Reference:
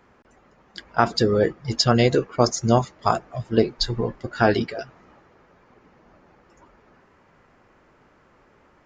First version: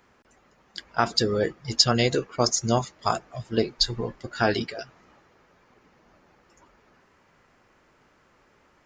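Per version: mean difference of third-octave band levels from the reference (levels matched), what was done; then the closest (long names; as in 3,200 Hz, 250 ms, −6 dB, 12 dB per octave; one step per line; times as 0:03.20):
2.0 dB: high-shelf EQ 2,500 Hz +10 dB
level −5.5 dB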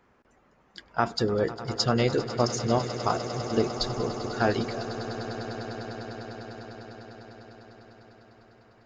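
9.0 dB: echo that builds up and dies away 100 ms, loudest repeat 8, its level −16.5 dB
level −6.5 dB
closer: first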